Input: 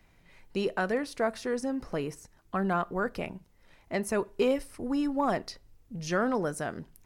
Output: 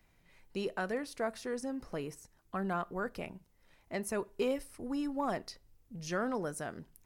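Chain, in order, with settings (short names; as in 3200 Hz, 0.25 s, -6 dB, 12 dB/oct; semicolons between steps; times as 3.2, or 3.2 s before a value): high shelf 7600 Hz +6 dB; gain -6.5 dB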